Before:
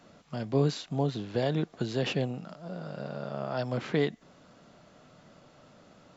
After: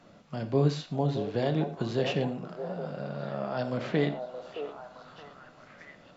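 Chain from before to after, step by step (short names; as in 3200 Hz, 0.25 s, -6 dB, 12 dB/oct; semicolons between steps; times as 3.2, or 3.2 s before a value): high shelf 6400 Hz -8 dB; delay with a stepping band-pass 0.62 s, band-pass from 610 Hz, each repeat 0.7 oct, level -4.5 dB; on a send at -8.5 dB: reverb, pre-delay 6 ms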